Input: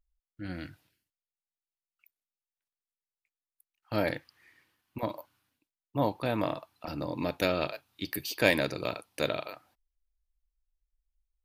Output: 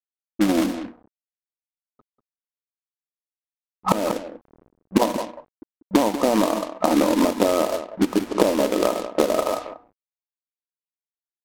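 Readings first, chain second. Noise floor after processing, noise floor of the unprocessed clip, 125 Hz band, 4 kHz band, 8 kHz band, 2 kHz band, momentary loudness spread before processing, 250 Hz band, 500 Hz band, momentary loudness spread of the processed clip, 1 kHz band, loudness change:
under -85 dBFS, under -85 dBFS, +3.5 dB, +6.0 dB, +15.0 dB, +1.0 dB, 16 LU, +14.5 dB, +11.0 dB, 11 LU, +12.5 dB, +10.5 dB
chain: local Wiener filter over 15 samples; recorder AGC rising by 17 dB/s; FFT band-pass 190–1300 Hz; in parallel at -6 dB: saturation -6.5 dBFS, distortion -13 dB; on the sum: compression 6:1, threshold -31 dBFS, peak gain reduction 21 dB; de-hum 241.4 Hz, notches 28; companded quantiser 4-bit; on a send: delay 192 ms -11.5 dB; on the sum: level-controlled noise filter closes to 360 Hz, open at -33.5 dBFS; loudness maximiser +16 dB; trim -1 dB

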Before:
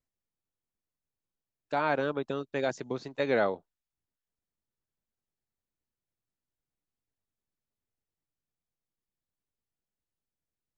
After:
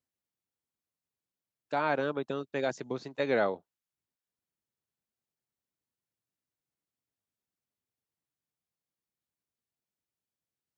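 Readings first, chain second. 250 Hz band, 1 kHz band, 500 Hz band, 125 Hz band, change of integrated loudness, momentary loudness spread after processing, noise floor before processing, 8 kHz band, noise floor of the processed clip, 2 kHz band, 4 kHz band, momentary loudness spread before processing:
-1.0 dB, -1.0 dB, -1.0 dB, -1.5 dB, -1.0 dB, 10 LU, under -85 dBFS, no reading, under -85 dBFS, -1.0 dB, -1.0 dB, 10 LU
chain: high-pass 91 Hz; trim -1 dB

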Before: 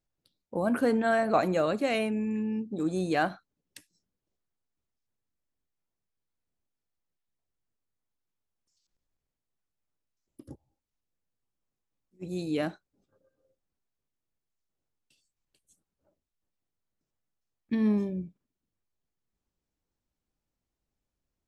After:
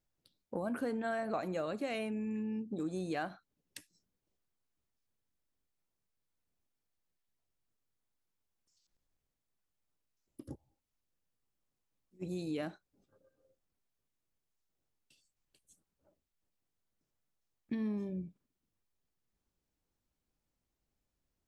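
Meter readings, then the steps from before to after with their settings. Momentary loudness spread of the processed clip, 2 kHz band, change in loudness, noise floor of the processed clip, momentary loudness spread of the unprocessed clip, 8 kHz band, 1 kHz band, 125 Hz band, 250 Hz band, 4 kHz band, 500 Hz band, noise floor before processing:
16 LU, -10.5 dB, -9.5 dB, under -85 dBFS, 12 LU, -7.5 dB, -11.0 dB, -8.0 dB, -8.5 dB, -9.0 dB, -10.0 dB, under -85 dBFS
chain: compression 3:1, threshold -37 dBFS, peak gain reduction 13.5 dB

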